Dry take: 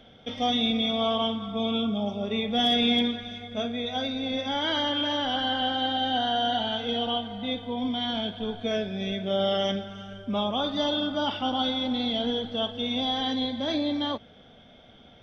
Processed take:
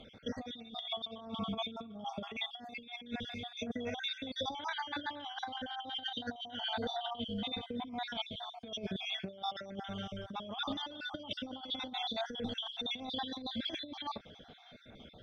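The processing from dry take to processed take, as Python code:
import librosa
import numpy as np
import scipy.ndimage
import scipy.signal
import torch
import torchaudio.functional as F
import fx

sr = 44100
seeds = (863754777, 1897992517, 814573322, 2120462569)

y = fx.spec_dropout(x, sr, seeds[0], share_pct=49)
y = fx.high_shelf(y, sr, hz=2500.0, db=5.5, at=(12.12, 12.54))
y = fx.echo_wet_highpass(y, sr, ms=653, feedback_pct=44, hz=4300.0, wet_db=-21.5)
y = fx.over_compress(y, sr, threshold_db=-34.0, ratio=-0.5)
y = F.gain(torch.from_numpy(y), -5.0).numpy()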